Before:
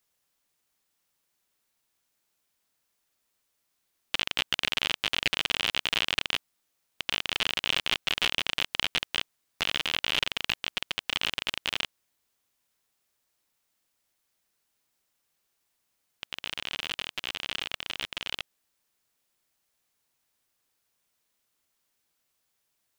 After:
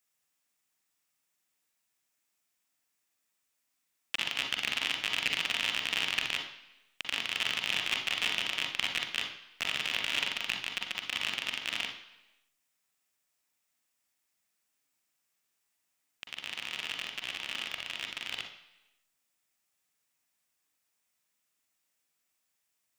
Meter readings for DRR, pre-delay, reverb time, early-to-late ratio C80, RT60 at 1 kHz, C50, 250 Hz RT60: 3.5 dB, 40 ms, 1.0 s, 10.5 dB, 1.0 s, 6.5 dB, 0.95 s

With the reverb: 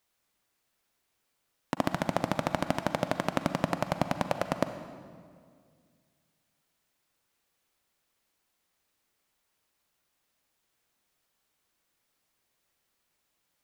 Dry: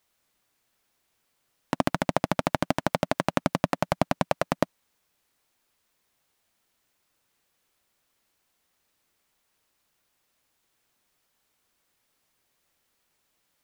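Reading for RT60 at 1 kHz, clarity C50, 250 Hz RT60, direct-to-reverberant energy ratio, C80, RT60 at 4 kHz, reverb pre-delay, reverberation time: 1.9 s, 9.5 dB, 2.4 s, 9.0 dB, 10.5 dB, 1.5 s, 37 ms, 2.0 s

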